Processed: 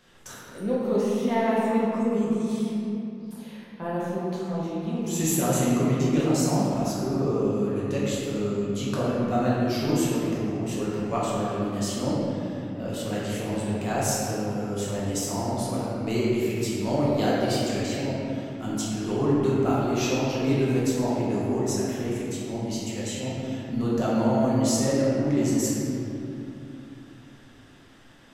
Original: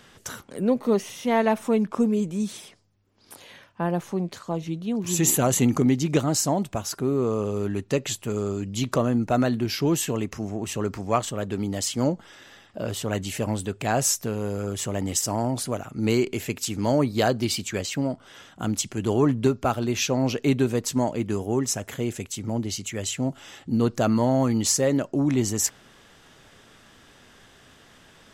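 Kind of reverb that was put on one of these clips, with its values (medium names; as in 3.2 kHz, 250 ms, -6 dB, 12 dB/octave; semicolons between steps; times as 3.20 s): simulated room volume 130 m³, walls hard, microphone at 1 m; trim -10 dB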